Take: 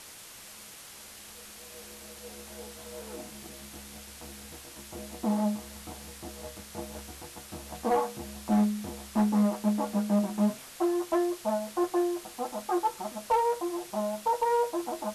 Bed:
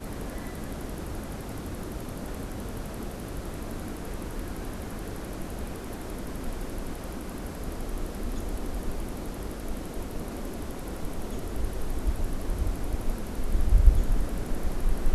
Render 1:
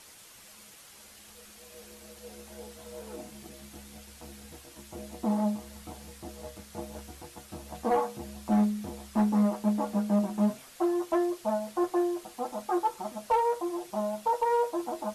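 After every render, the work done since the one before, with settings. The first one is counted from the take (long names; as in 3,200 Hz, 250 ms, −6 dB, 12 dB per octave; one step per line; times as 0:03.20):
broadband denoise 6 dB, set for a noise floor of −48 dBFS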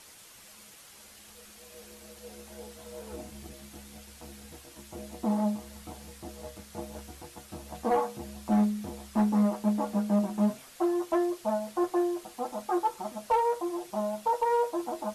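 0:03.11–0:03.53: parametric band 83 Hz +11.5 dB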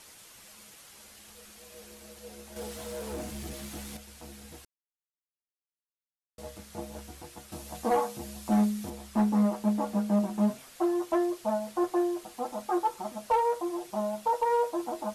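0:02.56–0:03.97: leveller curve on the samples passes 2
0:04.65–0:06.38: silence
0:07.52–0:08.90: high-shelf EQ 3,600 Hz +6 dB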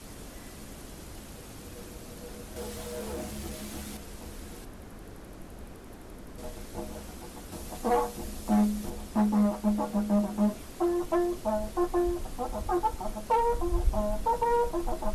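mix in bed −9.5 dB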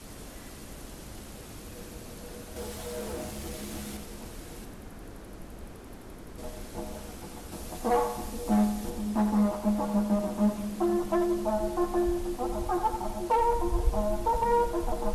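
echo with a time of its own for lows and highs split 460 Hz, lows 478 ms, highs 88 ms, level −8.5 dB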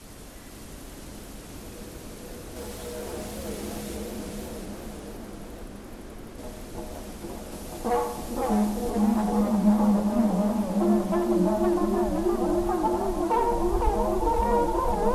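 echo through a band-pass that steps 455 ms, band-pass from 270 Hz, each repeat 0.7 octaves, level −1 dB
feedback echo with a swinging delay time 514 ms, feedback 55%, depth 215 cents, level −4 dB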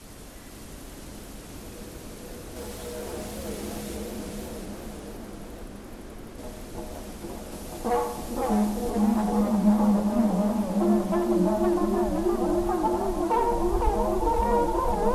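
no processing that can be heard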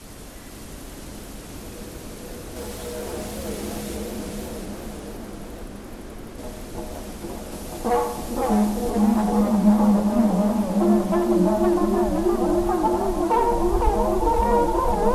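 level +4 dB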